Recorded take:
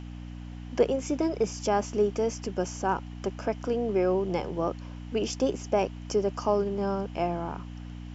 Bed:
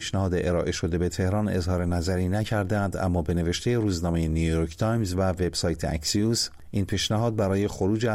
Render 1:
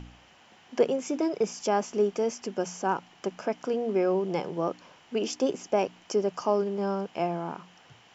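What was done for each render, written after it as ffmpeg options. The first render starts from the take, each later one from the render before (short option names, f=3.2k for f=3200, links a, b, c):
-af "bandreject=f=60:t=h:w=4,bandreject=f=120:t=h:w=4,bandreject=f=180:t=h:w=4,bandreject=f=240:t=h:w=4,bandreject=f=300:t=h:w=4"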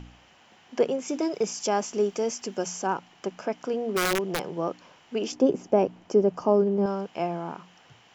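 -filter_complex "[0:a]asettb=1/sr,asplit=3[a][b][c];[a]atrim=end=1.084[d];[b]atrim=start=1.08:end=2.87,asetpts=PTS-STARTPTS,afade=t=in:d=0.004:c=qsin,afade=t=out:st=1.786:d=0.004:c=qsin,highshelf=f=4.7k:g=9[e];[c]atrim=start=2.866[f];[d][e]acrossfade=d=0.004:c1=hsin:c2=qsin[g];[g][f]acrossfade=d=0.004:c1=qsin:c2=hsin,asplit=3[h][i][j];[h]afade=t=out:st=3.96:d=0.02[k];[i]aeval=exprs='(mod(8.91*val(0)+1,2)-1)/8.91':c=same,afade=t=in:st=3.96:d=0.02,afade=t=out:st=4.54:d=0.02[l];[j]afade=t=in:st=4.54:d=0.02[m];[k][l][m]amix=inputs=3:normalize=0,asettb=1/sr,asplit=3[n][o][p];[n]atrim=end=5.324[q];[o]atrim=start=5.32:end=6.86,asetpts=PTS-STARTPTS,afade=t=in:d=0.004:c=qsin,afade=t=out:st=1.536:d=0.004:c=qsin,tiltshelf=f=970:g=8[r];[p]atrim=start=6.856[s];[q][r]acrossfade=d=0.004:c1=hsin:c2=qsin[t];[t][s]acrossfade=d=0.004:c1=qsin:c2=hsin"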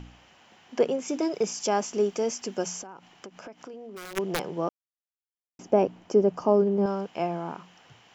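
-filter_complex "[0:a]asplit=3[a][b][c];[a]afade=t=out:st=2.81:d=0.02[d];[b]acompressor=threshold=-39dB:ratio=8:attack=3.2:release=140:knee=1:detection=peak,afade=t=in:st=2.81:d=0.02,afade=t=out:st=4.16:d=0.02[e];[c]afade=t=in:st=4.16:d=0.02[f];[d][e][f]amix=inputs=3:normalize=0,asplit=3[g][h][i];[g]atrim=end=4.69,asetpts=PTS-STARTPTS,afade=t=out:st=4.686:d=0.004:c=hsin[j];[h]atrim=start=4.69:end=5.59,asetpts=PTS-STARTPTS,volume=0[k];[i]atrim=start=5.59,asetpts=PTS-STARTPTS,afade=t=in:d=0.004:c=hsin[l];[j][k][l]concat=n=3:v=0:a=1"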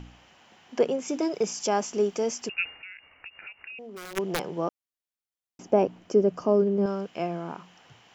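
-filter_complex "[0:a]asettb=1/sr,asplit=3[a][b][c];[a]atrim=end=2.494[d];[b]atrim=start=2.49:end=3.79,asetpts=PTS-STARTPTS,afade=t=in:d=0.004:c=qsin,afade=t=out:st=1.296:d=0.004:c=qsin,lowpass=f=2.6k:t=q:w=0.5098,lowpass=f=2.6k:t=q:w=0.6013,lowpass=f=2.6k:t=q:w=0.9,lowpass=f=2.6k:t=q:w=2.563,afreqshift=-3000[e];[c]atrim=start=3.786[f];[d][e]acrossfade=d=0.004:c1=hsin:c2=qsin[g];[g][f]acrossfade=d=0.004:c1=qsin:c2=hsin,asettb=1/sr,asplit=3[h][i][j];[h]atrim=end=5.984[k];[i]atrim=start=5.98:end=7.5,asetpts=PTS-STARTPTS,afade=t=in:d=0.004:c=qsin,afade=t=out:st=1.516:d=0.004:c=qsin,equalizer=f=870:t=o:w=0.41:g=-8[l];[j]atrim=start=7.496[m];[k][l]acrossfade=d=0.004:c1=hsin:c2=qsin[n];[n][m]acrossfade=d=0.004:c1=qsin:c2=hsin"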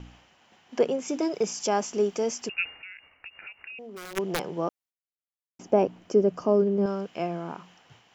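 -af "agate=range=-33dB:threshold=-52dB:ratio=3:detection=peak"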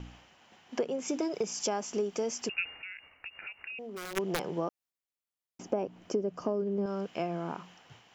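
-af "acompressor=threshold=-28dB:ratio=6"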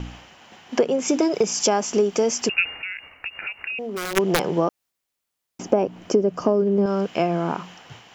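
-af "volume=12dB"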